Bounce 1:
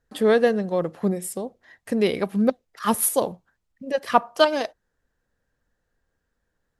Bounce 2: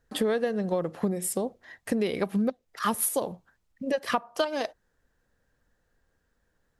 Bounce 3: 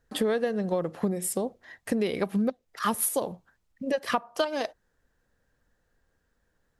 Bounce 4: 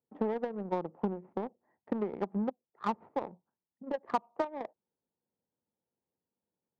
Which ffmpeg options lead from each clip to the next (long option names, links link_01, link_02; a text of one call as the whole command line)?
ffmpeg -i in.wav -af "acompressor=threshold=-26dB:ratio=12,volume=3dB" out.wav
ffmpeg -i in.wav -af anull out.wav
ffmpeg -i in.wav -af "aeval=exprs='0.299*(cos(1*acos(clip(val(0)/0.299,-1,1)))-cos(1*PI/2))+0.0299*(cos(3*acos(clip(val(0)/0.299,-1,1)))-cos(3*PI/2))+0.0168*(cos(7*acos(clip(val(0)/0.299,-1,1)))-cos(7*PI/2))+0.00531*(cos(8*acos(clip(val(0)/0.299,-1,1)))-cos(8*PI/2))':channel_layout=same,highpass=frequency=110:width=0.5412,highpass=frequency=110:width=1.3066,equalizer=frequency=120:width_type=q:width=4:gain=-7,equalizer=frequency=210:width_type=q:width=4:gain=3,equalizer=frequency=370:width_type=q:width=4:gain=4,equalizer=frequency=890:width_type=q:width=4:gain=8,equalizer=frequency=1600:width_type=q:width=4:gain=-8,lowpass=frequency=2000:width=0.5412,lowpass=frequency=2000:width=1.3066,adynamicsmooth=sensitivity=2.5:basefreq=940,volume=-3.5dB" out.wav